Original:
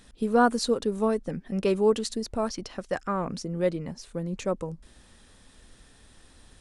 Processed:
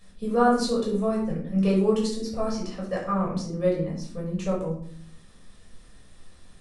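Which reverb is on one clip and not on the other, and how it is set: shoebox room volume 750 m³, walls furnished, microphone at 5.9 m; gain -8 dB

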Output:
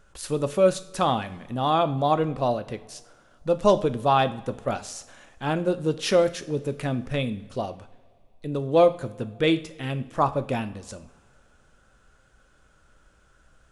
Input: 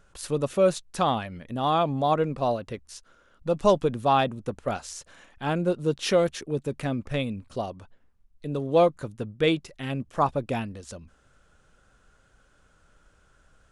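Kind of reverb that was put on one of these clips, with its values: two-slope reverb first 0.49 s, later 2.4 s, from -18 dB, DRR 10.5 dB; gain +1 dB

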